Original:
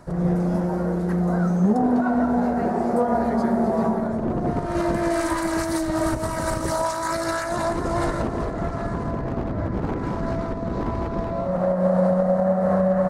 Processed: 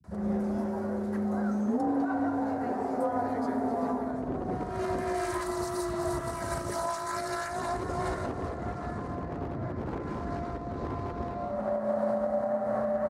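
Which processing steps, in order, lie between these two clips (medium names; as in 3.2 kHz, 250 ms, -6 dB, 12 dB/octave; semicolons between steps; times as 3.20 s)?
bands offset in time lows, highs 40 ms, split 150 Hz; frequency shift +31 Hz; spectral replace 5.46–6.26 s, 1–3.7 kHz after; trim -8 dB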